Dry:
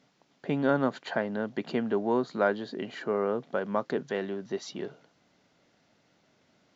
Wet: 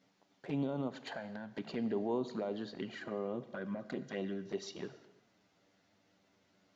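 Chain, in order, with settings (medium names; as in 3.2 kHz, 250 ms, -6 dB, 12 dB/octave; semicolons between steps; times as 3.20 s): peak limiter -23 dBFS, peak gain reduction 11 dB; 0.87–1.51 s: compression 2:1, threshold -36 dBFS, peak gain reduction 4 dB; touch-sensitive flanger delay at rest 11 ms, full sweep at -28.5 dBFS; 2.95–4.49 s: comb of notches 440 Hz; gated-style reverb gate 390 ms falling, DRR 12 dB; trim -2.5 dB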